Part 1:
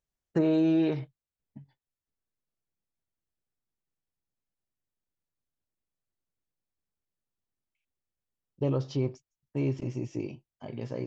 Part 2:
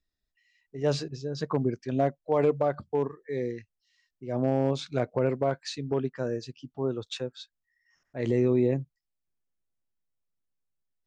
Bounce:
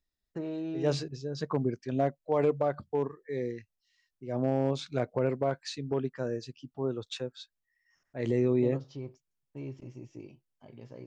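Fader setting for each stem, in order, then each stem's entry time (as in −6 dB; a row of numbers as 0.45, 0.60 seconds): −11.5, −2.5 decibels; 0.00, 0.00 seconds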